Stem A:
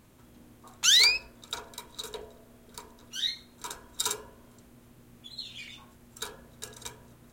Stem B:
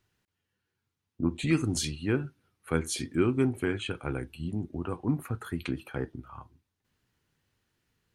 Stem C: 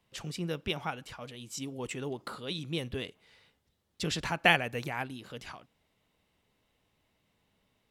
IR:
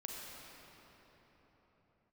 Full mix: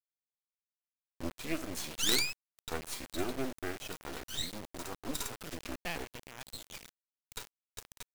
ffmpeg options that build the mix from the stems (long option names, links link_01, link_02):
-filter_complex "[0:a]bandreject=frequency=50:width_type=h:width=6,bandreject=frequency=100:width_type=h:width=6,bandreject=frequency=150:width_type=h:width=6,bandreject=frequency=200:width_type=h:width=6,bandreject=frequency=250:width_type=h:width=6,bandreject=frequency=300:width_type=h:width=6,bandreject=frequency=350:width_type=h:width=6,dynaudnorm=framelen=160:gausssize=7:maxgain=12dB,adelay=1150,volume=-14.5dB[link_01];[1:a]highpass=210,volume=-4.5dB,asplit=2[link_02][link_03];[2:a]acrusher=bits=4:mix=0:aa=0.000001,adelay=1400,volume=-1.5dB[link_04];[link_03]apad=whole_len=410420[link_05];[link_04][link_05]sidechaincompress=threshold=-47dB:ratio=4:attack=5.8:release=924[link_06];[link_01][link_02][link_06]amix=inputs=3:normalize=0,acrusher=bits=4:dc=4:mix=0:aa=0.000001"